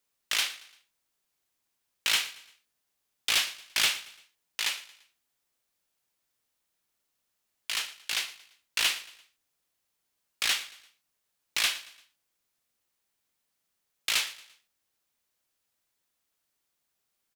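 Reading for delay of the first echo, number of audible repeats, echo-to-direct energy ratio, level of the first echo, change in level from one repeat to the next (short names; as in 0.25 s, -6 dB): 0.114 s, 3, -17.0 dB, -18.0 dB, -7.5 dB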